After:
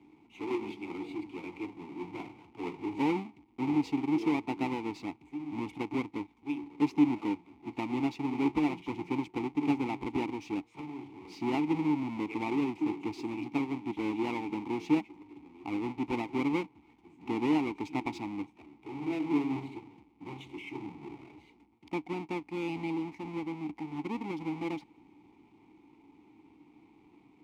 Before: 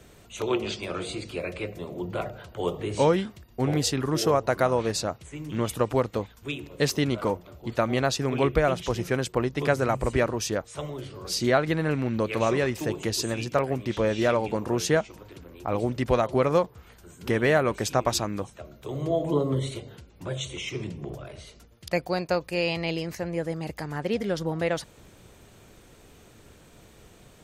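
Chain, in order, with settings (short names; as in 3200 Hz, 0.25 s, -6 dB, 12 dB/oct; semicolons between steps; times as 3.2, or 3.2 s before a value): half-waves squared off; vowel filter u; gain +1 dB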